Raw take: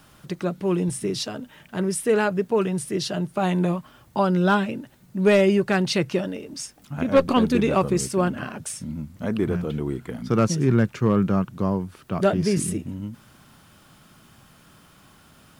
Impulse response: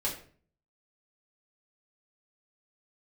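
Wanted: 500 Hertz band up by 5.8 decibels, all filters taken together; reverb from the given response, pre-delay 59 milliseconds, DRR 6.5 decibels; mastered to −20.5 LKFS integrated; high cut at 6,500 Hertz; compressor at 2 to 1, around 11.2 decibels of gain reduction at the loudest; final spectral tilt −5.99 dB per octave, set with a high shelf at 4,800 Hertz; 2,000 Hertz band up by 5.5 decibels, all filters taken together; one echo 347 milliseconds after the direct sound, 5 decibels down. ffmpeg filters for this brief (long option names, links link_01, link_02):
-filter_complex "[0:a]lowpass=6500,equalizer=frequency=500:width_type=o:gain=7,equalizer=frequency=2000:width_type=o:gain=8.5,highshelf=frequency=4800:gain=-9,acompressor=threshold=-27dB:ratio=2,aecho=1:1:347:0.562,asplit=2[link_01][link_02];[1:a]atrim=start_sample=2205,adelay=59[link_03];[link_02][link_03]afir=irnorm=-1:irlink=0,volume=-12dB[link_04];[link_01][link_04]amix=inputs=2:normalize=0,volume=5dB"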